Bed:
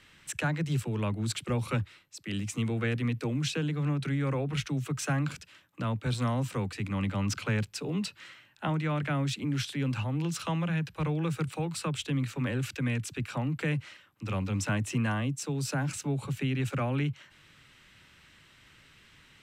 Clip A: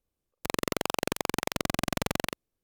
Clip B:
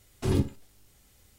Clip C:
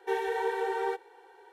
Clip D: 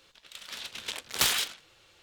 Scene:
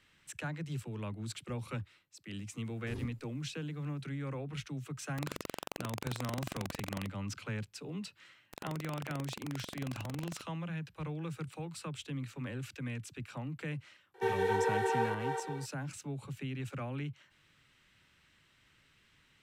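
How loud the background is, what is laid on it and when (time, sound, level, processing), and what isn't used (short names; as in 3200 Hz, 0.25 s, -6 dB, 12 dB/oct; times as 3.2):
bed -9.5 dB
2.64 add B -18 dB
4.73 add A -12 dB
8.08 add A -16.5 dB
14.14 add C -2 dB + regenerating reverse delay 0.252 s, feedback 43%, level -4 dB
not used: D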